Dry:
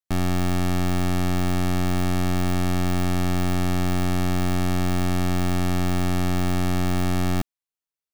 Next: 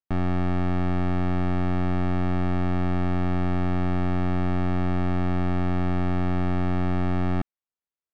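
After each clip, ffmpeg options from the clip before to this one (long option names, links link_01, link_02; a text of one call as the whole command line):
ffmpeg -i in.wav -af "lowpass=2000,volume=-1.5dB" out.wav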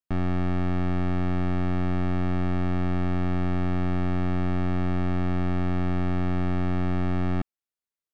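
ffmpeg -i in.wav -af "equalizer=frequency=840:width=1.5:gain=-2.5,volume=-1dB" out.wav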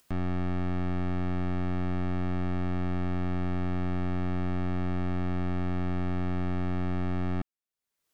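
ffmpeg -i in.wav -af "acompressor=mode=upward:threshold=-38dB:ratio=2.5,volume=-4.5dB" out.wav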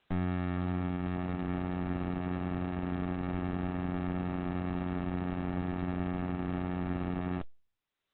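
ffmpeg -i in.wav -ar 48000 -c:a libopus -b:a 8k out.opus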